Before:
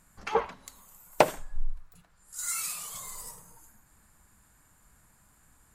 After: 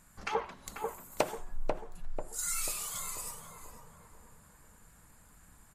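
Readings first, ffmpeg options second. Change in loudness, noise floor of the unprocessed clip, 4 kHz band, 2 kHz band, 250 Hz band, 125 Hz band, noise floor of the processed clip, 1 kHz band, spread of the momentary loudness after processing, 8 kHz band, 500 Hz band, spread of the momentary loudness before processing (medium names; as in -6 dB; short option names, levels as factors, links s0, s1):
-5.0 dB, -64 dBFS, -2.5 dB, -5.0 dB, -4.5 dB, -3.5 dB, -60 dBFS, -6.0 dB, 18 LU, -1.0 dB, -6.5 dB, 23 LU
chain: -filter_complex "[0:a]bandreject=f=362.4:t=h:w=4,bandreject=f=724.8:t=h:w=4,acompressor=threshold=0.0178:ratio=2,asplit=2[s0][s1];[s1]adelay=491,lowpass=f=1100:p=1,volume=0.708,asplit=2[s2][s3];[s3]adelay=491,lowpass=f=1100:p=1,volume=0.52,asplit=2[s4][s5];[s5]adelay=491,lowpass=f=1100:p=1,volume=0.52,asplit=2[s6][s7];[s7]adelay=491,lowpass=f=1100:p=1,volume=0.52,asplit=2[s8][s9];[s9]adelay=491,lowpass=f=1100:p=1,volume=0.52,asplit=2[s10][s11];[s11]adelay=491,lowpass=f=1100:p=1,volume=0.52,asplit=2[s12][s13];[s13]adelay=491,lowpass=f=1100:p=1,volume=0.52[s14];[s2][s4][s6][s8][s10][s12][s14]amix=inputs=7:normalize=0[s15];[s0][s15]amix=inputs=2:normalize=0,aresample=32000,aresample=44100,volume=1.19" -ar 48000 -c:a libmp3lame -b:a 64k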